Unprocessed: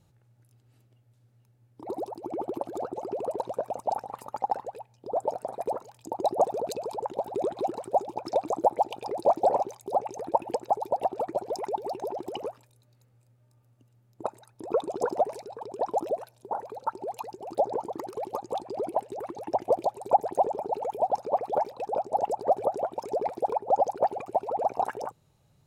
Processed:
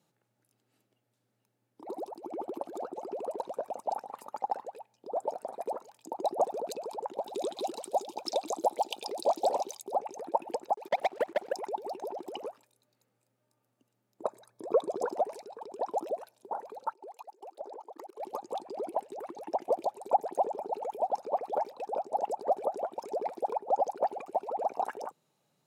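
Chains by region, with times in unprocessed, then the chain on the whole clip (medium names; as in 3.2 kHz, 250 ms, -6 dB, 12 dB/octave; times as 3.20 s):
7.27–9.83 s: resonant high shelf 2.5 kHz +10.5 dB, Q 1.5 + band-stop 160 Hz, Q 5.3
10.74–11.54 s: expander -38 dBFS + waveshaping leveller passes 3 + level held to a coarse grid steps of 20 dB
14.22–15.02 s: bass shelf 480 Hz +7 dB + band-stop 2.8 kHz, Q 6.4 + comb 1.8 ms, depth 38%
16.93–18.20 s: high-pass 320 Hz 24 dB/octave + level held to a coarse grid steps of 20 dB
whole clip: high-pass 180 Hz 24 dB/octave; bass shelf 460 Hz -3 dB; trim -3.5 dB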